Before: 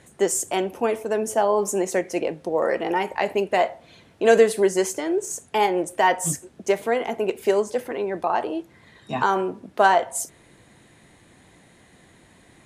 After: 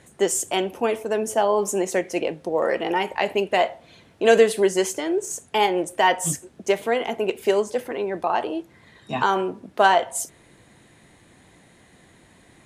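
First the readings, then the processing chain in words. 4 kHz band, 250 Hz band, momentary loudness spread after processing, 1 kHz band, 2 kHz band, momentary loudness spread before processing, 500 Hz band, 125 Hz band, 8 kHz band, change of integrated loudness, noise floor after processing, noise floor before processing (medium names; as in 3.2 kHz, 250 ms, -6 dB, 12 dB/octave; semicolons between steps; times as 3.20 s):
+5.0 dB, 0.0 dB, 9 LU, 0.0 dB, +1.0 dB, 9 LU, 0.0 dB, 0.0 dB, 0.0 dB, +0.5 dB, -55 dBFS, -55 dBFS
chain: dynamic bell 3.1 kHz, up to +6 dB, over -44 dBFS, Q 2.1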